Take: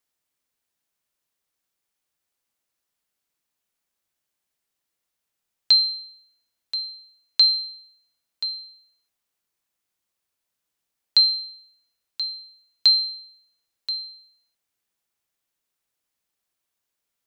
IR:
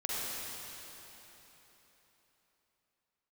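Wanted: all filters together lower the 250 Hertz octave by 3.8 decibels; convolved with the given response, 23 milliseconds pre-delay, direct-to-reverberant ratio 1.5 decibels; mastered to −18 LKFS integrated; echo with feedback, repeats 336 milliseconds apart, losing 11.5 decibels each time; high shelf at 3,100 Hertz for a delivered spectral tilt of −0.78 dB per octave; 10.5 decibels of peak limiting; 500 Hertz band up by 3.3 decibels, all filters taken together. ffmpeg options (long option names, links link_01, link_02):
-filter_complex "[0:a]equalizer=frequency=250:width_type=o:gain=-7.5,equalizer=frequency=500:width_type=o:gain=6,highshelf=frequency=3100:gain=-5.5,alimiter=limit=-21dB:level=0:latency=1,aecho=1:1:336|672|1008:0.266|0.0718|0.0194,asplit=2[link_01][link_02];[1:a]atrim=start_sample=2205,adelay=23[link_03];[link_02][link_03]afir=irnorm=-1:irlink=0,volume=-7.5dB[link_04];[link_01][link_04]amix=inputs=2:normalize=0,volume=11dB"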